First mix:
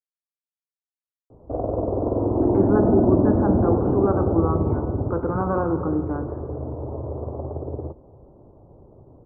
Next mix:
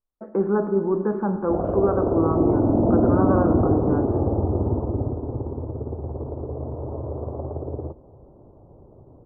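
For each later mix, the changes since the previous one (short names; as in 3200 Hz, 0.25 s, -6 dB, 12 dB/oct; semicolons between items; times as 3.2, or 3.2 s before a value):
speech: entry -2.20 s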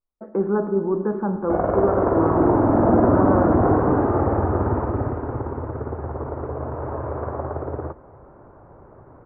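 background: remove Gaussian blur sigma 12 samples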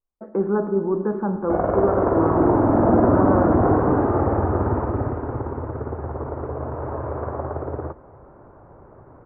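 none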